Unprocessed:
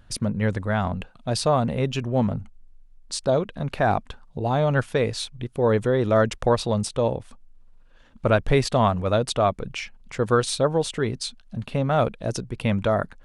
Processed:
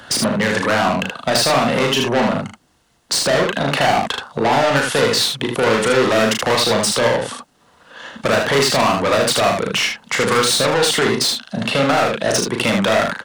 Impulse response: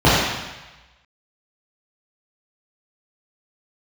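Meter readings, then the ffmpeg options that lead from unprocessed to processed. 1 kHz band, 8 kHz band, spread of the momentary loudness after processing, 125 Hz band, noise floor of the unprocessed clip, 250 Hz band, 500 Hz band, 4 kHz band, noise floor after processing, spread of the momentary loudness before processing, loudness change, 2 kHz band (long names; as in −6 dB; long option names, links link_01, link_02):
+8.0 dB, +13.5 dB, 6 LU, −1.0 dB, −52 dBFS, +5.5 dB, +6.0 dB, +15.0 dB, −58 dBFS, 11 LU, +7.5 dB, +13.0 dB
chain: -filter_complex "[0:a]highpass=80,bandreject=frequency=2400:width=7.4,asplit=2[link_01][link_02];[link_02]highpass=frequency=720:poles=1,volume=29dB,asoftclip=type=tanh:threshold=-6.5dB[link_03];[link_01][link_03]amix=inputs=2:normalize=0,lowpass=frequency=7400:poles=1,volume=-6dB,acrossover=split=340|710[link_04][link_05][link_06];[link_04]acompressor=threshold=-20dB:ratio=4[link_07];[link_05]acompressor=threshold=-29dB:ratio=4[link_08];[link_06]acompressor=threshold=-19dB:ratio=4[link_09];[link_07][link_08][link_09]amix=inputs=3:normalize=0,aecho=1:1:36|77:0.596|0.631,acrossover=split=140[link_10][link_11];[link_10]acompressor=threshold=-41dB:ratio=6[link_12];[link_12][link_11]amix=inputs=2:normalize=0,volume=1.5dB"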